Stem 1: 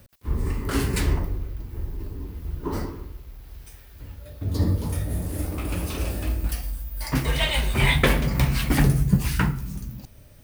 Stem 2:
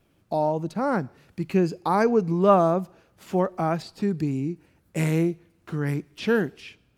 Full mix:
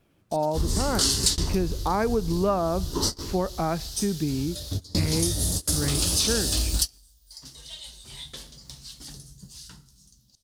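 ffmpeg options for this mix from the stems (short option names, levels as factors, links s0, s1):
-filter_complex "[0:a]lowpass=4900,aexciter=amount=13.4:drive=9.2:freq=3700,adelay=300,volume=1.12[s0];[1:a]volume=0.944,asplit=2[s1][s2];[s2]apad=whole_len=473518[s3];[s0][s3]sidechaingate=range=0.0355:threshold=0.00141:ratio=16:detection=peak[s4];[s4][s1]amix=inputs=2:normalize=0,acompressor=threshold=0.1:ratio=5"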